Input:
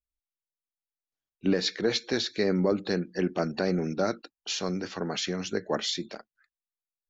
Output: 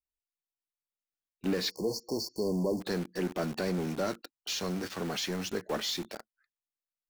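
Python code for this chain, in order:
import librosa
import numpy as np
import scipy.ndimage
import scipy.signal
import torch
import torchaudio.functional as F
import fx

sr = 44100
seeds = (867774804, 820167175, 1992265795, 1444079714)

p1 = fx.quant_companded(x, sr, bits=2)
p2 = x + (p1 * 10.0 ** (-5.0 / 20.0))
p3 = fx.brickwall_bandstop(p2, sr, low_hz=1100.0, high_hz=4300.0, at=(1.69, 2.8), fade=0.02)
y = p3 * 10.0 ** (-8.0 / 20.0)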